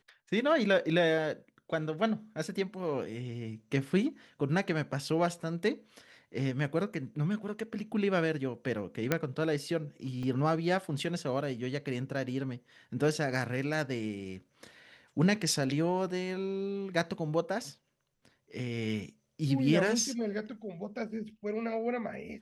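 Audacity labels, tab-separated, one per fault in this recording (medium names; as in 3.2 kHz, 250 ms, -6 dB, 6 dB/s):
9.120000	9.120000	pop -12 dBFS
10.230000	10.230000	dropout 3.3 ms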